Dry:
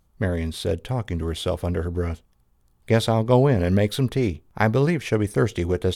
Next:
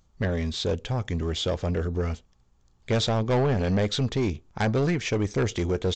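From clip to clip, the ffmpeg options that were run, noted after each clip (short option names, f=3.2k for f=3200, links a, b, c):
-af "highshelf=f=4.7k:g=8.5,aresample=16000,asoftclip=type=tanh:threshold=-18.5dB,aresample=44100"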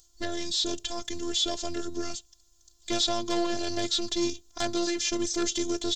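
-filter_complex "[0:a]acrossover=split=2800[a][b];[b]acompressor=threshold=-42dB:ratio=4:attack=1:release=60[c];[a][c]amix=inputs=2:normalize=0,afftfilt=real='hypot(re,im)*cos(PI*b)':imag='0':win_size=512:overlap=0.75,aexciter=amount=7.3:drive=6.6:freq=3.3k"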